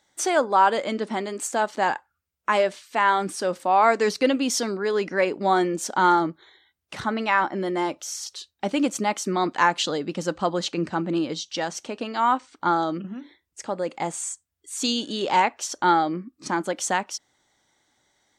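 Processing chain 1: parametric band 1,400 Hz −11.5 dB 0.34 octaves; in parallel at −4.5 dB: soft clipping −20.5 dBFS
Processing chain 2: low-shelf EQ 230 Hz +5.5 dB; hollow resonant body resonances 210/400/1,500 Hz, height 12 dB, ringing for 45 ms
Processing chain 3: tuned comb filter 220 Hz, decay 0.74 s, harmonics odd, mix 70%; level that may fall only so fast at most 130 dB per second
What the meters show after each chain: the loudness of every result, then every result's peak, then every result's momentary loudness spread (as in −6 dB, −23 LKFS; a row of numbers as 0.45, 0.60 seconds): −22.5, −18.5, −34.0 LKFS; −6.5, −2.0, −15.0 dBFS; 10, 11, 12 LU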